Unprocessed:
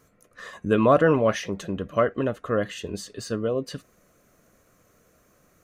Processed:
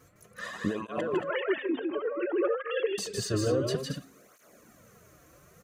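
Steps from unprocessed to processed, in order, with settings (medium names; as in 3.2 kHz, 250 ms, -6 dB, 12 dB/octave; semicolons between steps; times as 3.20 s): 1.07–2.98 s: formants replaced by sine waves; compressor with a negative ratio -27 dBFS, ratio -1; de-hum 269.5 Hz, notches 31; on a send: loudspeakers at several distances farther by 54 m -3 dB, 78 m -8 dB; on the sum: cancelling through-zero flanger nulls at 0.57 Hz, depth 5.1 ms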